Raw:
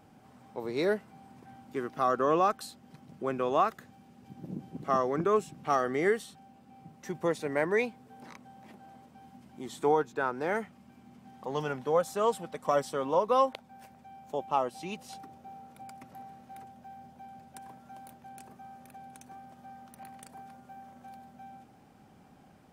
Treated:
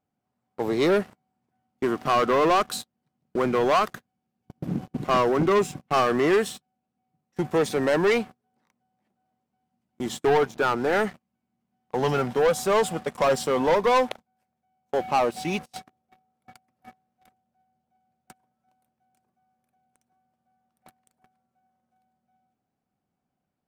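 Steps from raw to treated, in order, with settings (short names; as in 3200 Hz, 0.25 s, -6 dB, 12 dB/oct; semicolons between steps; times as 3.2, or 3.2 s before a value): gate -44 dBFS, range -18 dB; sample leveller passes 3; speed mistake 25 fps video run at 24 fps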